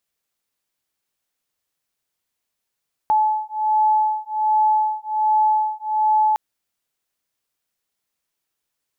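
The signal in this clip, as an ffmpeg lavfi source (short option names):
-f lavfi -i "aevalsrc='0.112*(sin(2*PI*860*t)+sin(2*PI*861.3*t))':d=3.26:s=44100"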